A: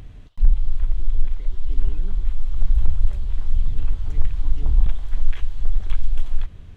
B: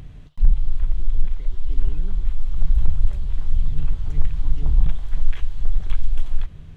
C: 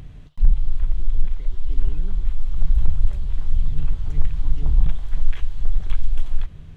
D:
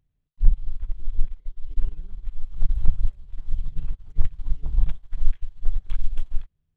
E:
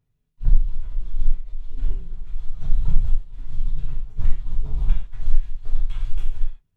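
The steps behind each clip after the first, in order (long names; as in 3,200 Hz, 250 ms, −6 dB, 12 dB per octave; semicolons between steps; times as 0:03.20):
parametric band 150 Hz +10.5 dB 0.27 octaves
no processing that can be heard
expander for the loud parts 2.5 to 1, over −30 dBFS; level +1.5 dB
reverb whose tail is shaped and stops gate 180 ms falling, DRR −7 dB; level −4 dB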